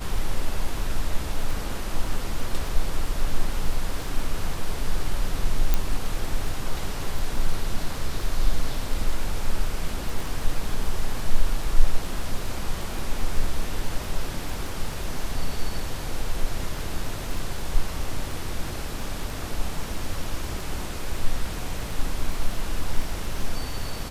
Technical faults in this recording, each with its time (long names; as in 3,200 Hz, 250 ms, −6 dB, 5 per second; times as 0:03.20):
surface crackle 13 per second −28 dBFS
0:05.74: click −7 dBFS